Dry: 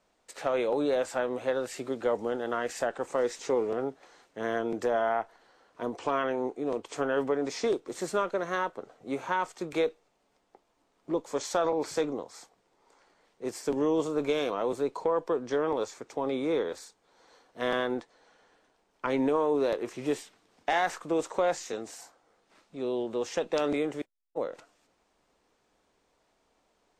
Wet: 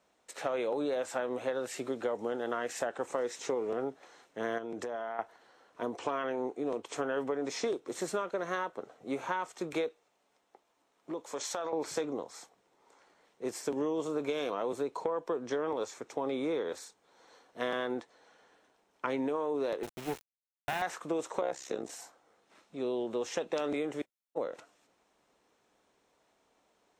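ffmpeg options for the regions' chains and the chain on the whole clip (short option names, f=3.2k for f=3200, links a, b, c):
-filter_complex "[0:a]asettb=1/sr,asplit=3[a][b][c];[a]atrim=end=4.584[d];[b]atrim=start=4.58:end=5.19,asetpts=PTS-STARTPTS,afade=t=in:d=0.004:c=qsin,afade=t=out:st=0.606:d=0.004:c=qsin,lowpass=11k,acompressor=threshold=-33dB:ratio=12:attack=3.2:release=140:knee=1:detection=peak[e];[c]atrim=start=5.186[f];[d][e]acrossfade=d=0.004:c1=hsin:c2=qsin[g];[g][f]acrossfade=d=0.004:c1=qsin:c2=hsin,asettb=1/sr,asplit=3[h][i][j];[h]atrim=end=9.884[k];[i]atrim=start=9.88:end=11.73,asetpts=PTS-STARTPTS,afade=t=in:d=0.004:c=qsin,afade=t=out:st=1.846:d=0.004:c=qsin,acompressor=threshold=-29dB:ratio=6:attack=3.2:release=140:knee=1:detection=peak,lowshelf=f=370:g=-7[l];[j]atrim=start=11.726[m];[k][l]acrossfade=d=0.004:c1=hsin:c2=qsin[n];[n][m]acrossfade=d=0.004:c1=qsin:c2=hsin,asettb=1/sr,asplit=3[o][p][q];[o]atrim=end=19.834[r];[p]atrim=start=19.83:end=20.82,asetpts=PTS-STARTPTS,afade=t=in:d=0.004:c=qsin,afade=t=out:st=0.986:d=0.004:c=qsin,highshelf=f=3.1k:g=-10.5,acrusher=bits=4:dc=4:mix=0:aa=0.000001[s];[q]atrim=start=20.816[t];[r][s]acrossfade=d=0.004:c1=hsin:c2=qsin[u];[u][t]acrossfade=d=0.004:c1=qsin:c2=hsin,asettb=1/sr,asplit=3[v][w][x];[v]atrim=end=21.414[y];[w]atrim=start=21.41:end=21.9,asetpts=PTS-STARTPTS,afade=t=in:d=0.004:c=qsin,afade=t=out:st=0.486:d=0.004:c=qsin,equalizer=f=370:t=o:w=2.7:g=5,tremolo=f=66:d=0.857[z];[x]atrim=start=21.896[aa];[y][z]acrossfade=d=0.004:c1=hsin:c2=qsin[ab];[ab][aa]acrossfade=d=0.004:c1=qsin:c2=hsin,highpass=f=120:p=1,bandreject=f=4.7k:w=13,acompressor=threshold=-29dB:ratio=6"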